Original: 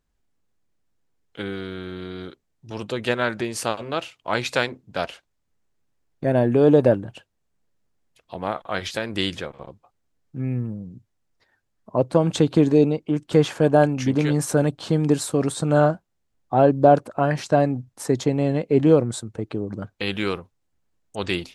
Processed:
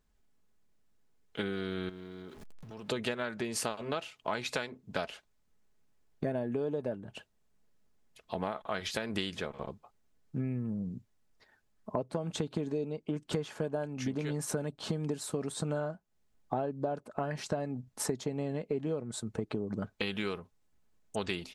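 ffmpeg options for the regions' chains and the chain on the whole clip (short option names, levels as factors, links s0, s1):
-filter_complex "[0:a]asettb=1/sr,asplit=3[s0][s1][s2];[s0]atrim=end=1.894[s3];[s1]atrim=start=1.89:end=2.89,asetpts=PTS-STARTPTS,afade=t=in:d=0.004:c=qsin,afade=t=out:st=0.996:d=0.004:c=qsin,aeval=exprs='val(0)+0.5*0.00794*sgn(val(0))':c=same,highshelf=f=3600:g=-7.5,acompressor=threshold=0.00447:ratio=3:attack=3.2:release=140:knee=1:detection=peak[s4];[s2]atrim=start=2.886[s5];[s3][s4]acrossfade=d=0.004:c1=hsin:c2=qsin[s6];[s6][s5]acrossfade=d=0.004:c1=qsin:c2=hsin,aecho=1:1:4.7:0.31,acompressor=threshold=0.0316:ratio=16"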